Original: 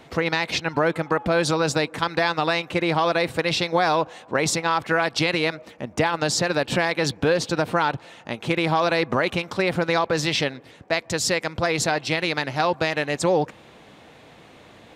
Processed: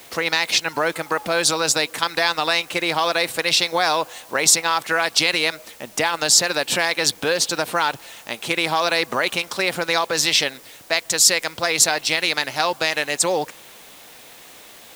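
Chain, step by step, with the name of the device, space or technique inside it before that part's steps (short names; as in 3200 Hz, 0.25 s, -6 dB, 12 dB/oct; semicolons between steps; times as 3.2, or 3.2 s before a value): turntable without a phono preamp (RIAA curve recording; white noise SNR 25 dB); gain +1 dB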